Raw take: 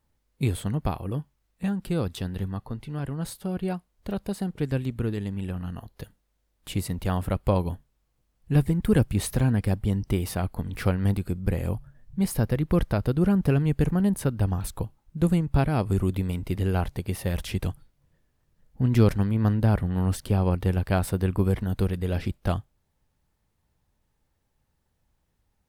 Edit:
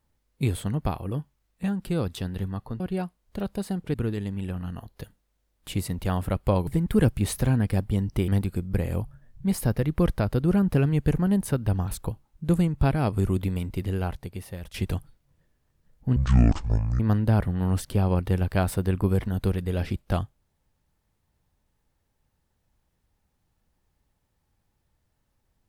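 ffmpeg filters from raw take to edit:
-filter_complex "[0:a]asplit=8[a][b][c][d][e][f][g][h];[a]atrim=end=2.802[i];[b]atrim=start=3.508:end=4.652[j];[c]atrim=start=4.938:end=7.672[k];[d]atrim=start=8.608:end=10.222[l];[e]atrim=start=11.008:end=17.47,asetpts=PTS-STARTPTS,afade=t=out:st=5.262:d=1.2:silence=0.211349[m];[f]atrim=start=17.47:end=18.894,asetpts=PTS-STARTPTS,afade=t=in:d=0.004:c=hsin:silence=0.211349[n];[g]atrim=start=18.89:end=19.35,asetpts=PTS-STARTPTS,asetrate=24255,aresample=44100[o];[h]atrim=start=19.346[p];[i][j]acrossfade=d=0.004:c1=hsin:c2=hsin[q];[q][k]acrossfade=d=0.004:c1=hsin:c2=hsin[r];[r][l]acrossfade=d=0.004:c1=hsin:c2=hsin[s];[m][n]concat=n=2:v=0:a=1[t];[s][t]acrossfade=d=0.004:c1=hsin:c2=hsin[u];[u][o]acrossfade=d=0.004:c1=hsin:c2=hsin[v];[v][p]acrossfade=d=0.004:c1=hsin:c2=hsin"

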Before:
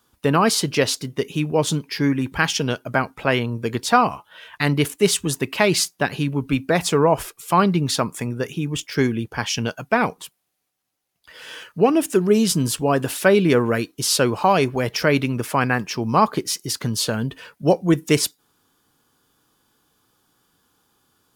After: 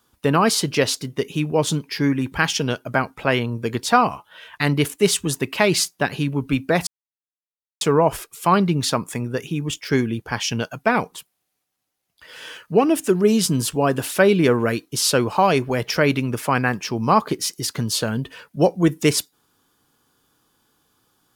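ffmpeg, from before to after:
-filter_complex "[0:a]asplit=2[a][b];[a]atrim=end=6.87,asetpts=PTS-STARTPTS,afade=t=out:st=6.866:d=0.004:c=hsin,apad=pad_dur=0.94[c];[b]atrim=start=6.87,asetpts=PTS-STARTPTS,afade=t=in:d=0.004:c=hsin[d];[c][d]concat=n=2:v=0:a=1"

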